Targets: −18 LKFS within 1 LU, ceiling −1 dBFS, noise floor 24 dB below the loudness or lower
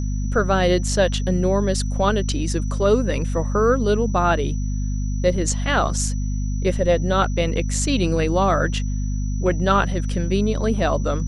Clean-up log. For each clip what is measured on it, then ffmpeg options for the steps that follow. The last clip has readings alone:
mains hum 50 Hz; hum harmonics up to 250 Hz; level of the hum −21 dBFS; interfering tone 5,900 Hz; level of the tone −42 dBFS; integrated loudness −21.0 LKFS; sample peak −5.0 dBFS; target loudness −18.0 LKFS
→ -af "bandreject=frequency=50:width_type=h:width=4,bandreject=frequency=100:width_type=h:width=4,bandreject=frequency=150:width_type=h:width=4,bandreject=frequency=200:width_type=h:width=4,bandreject=frequency=250:width_type=h:width=4"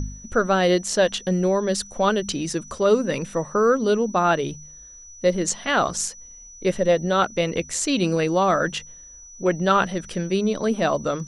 mains hum none found; interfering tone 5,900 Hz; level of the tone −42 dBFS
→ -af "bandreject=frequency=5900:width=30"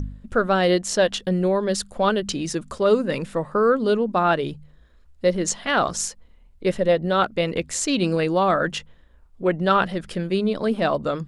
interfering tone none found; integrated loudness −22.5 LKFS; sample peak −6.5 dBFS; target loudness −18.0 LKFS
→ -af "volume=4.5dB"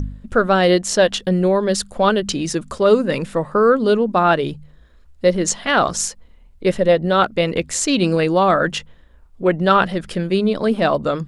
integrated loudness −18.0 LKFS; sample peak −2.0 dBFS; background noise floor −48 dBFS

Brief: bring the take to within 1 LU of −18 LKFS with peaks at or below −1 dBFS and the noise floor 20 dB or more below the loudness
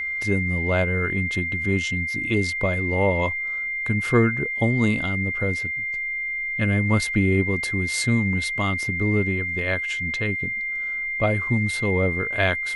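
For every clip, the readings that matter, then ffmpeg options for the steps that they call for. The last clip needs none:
interfering tone 2,100 Hz; level of the tone −25 dBFS; integrated loudness −22.5 LKFS; sample peak −6.5 dBFS; target loudness −18.0 LKFS
→ -af "bandreject=frequency=2100:width=30"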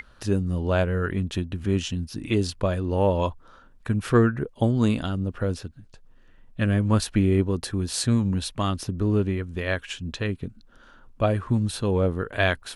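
interfering tone none found; integrated loudness −25.0 LKFS; sample peak −6.5 dBFS; target loudness −18.0 LKFS
→ -af "volume=7dB,alimiter=limit=-1dB:level=0:latency=1"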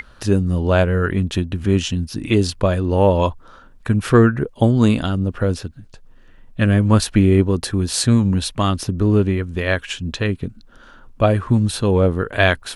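integrated loudness −18.0 LKFS; sample peak −1.0 dBFS; background noise floor −46 dBFS

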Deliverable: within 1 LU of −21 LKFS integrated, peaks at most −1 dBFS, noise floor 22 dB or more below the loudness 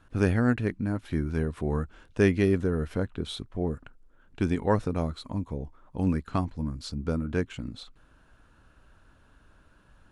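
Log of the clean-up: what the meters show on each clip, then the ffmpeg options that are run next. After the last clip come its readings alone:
integrated loudness −29.0 LKFS; sample peak −8.0 dBFS; target loudness −21.0 LKFS
→ -af "volume=8dB,alimiter=limit=-1dB:level=0:latency=1"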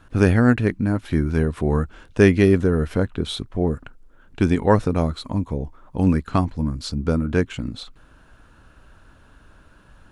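integrated loudness −21.0 LKFS; sample peak −1.0 dBFS; background noise floor −52 dBFS

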